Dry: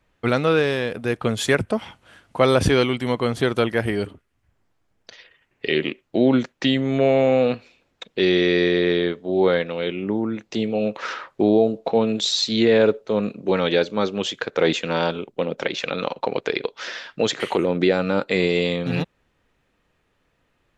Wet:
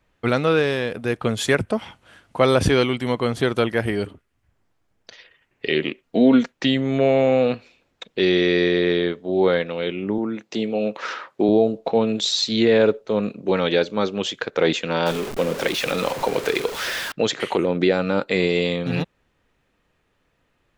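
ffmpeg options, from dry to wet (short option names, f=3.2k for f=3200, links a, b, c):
-filter_complex "[0:a]asettb=1/sr,asplit=3[a][b][c];[a]atrim=end=6.034[d];[b]atrim=start=6.03:end=6.51,asetpts=PTS-STARTPTS,afade=t=in:d=0.004:c=qsin,afade=t=out:st=0.476:d=0.004:c=qsin,aecho=1:1:4.3:0.65,atrim=end_sample=21168[e];[c]atrim=start=6.506[f];[d][e]acrossfade=d=0.004:c1=hsin:c2=qsin[g];[g][f]acrossfade=d=0.004:c1=qsin:c2=hsin,asettb=1/sr,asplit=3[h][i][j];[h]atrim=end=10.184[k];[i]atrim=start=10.18:end=11.49,asetpts=PTS-STARTPTS,afade=t=in:d=0.004:c=qsin,afade=t=out:st=1.306:d=0.004:c=qsin,highpass=160[l];[j]atrim=start=11.486[m];[k][l]acrossfade=d=0.004:c1=hsin:c2=qsin[n];[n][m]acrossfade=d=0.004:c1=qsin:c2=hsin,asettb=1/sr,asplit=3[o][p][q];[o]atrim=end=15.064[r];[p]atrim=start=15.06:end=17.12,asetpts=PTS-STARTPTS,afade=t=in:d=0.004:c=qsin,afade=t=out:st=2.056:d=0.004:c=qsin,aeval=exprs='val(0)+0.5*0.0531*sgn(val(0))':c=same[s];[q]atrim=start=17.116[t];[r][s]acrossfade=d=0.004:c1=hsin:c2=qsin[u];[u][t]acrossfade=d=0.004:c1=qsin:c2=hsin"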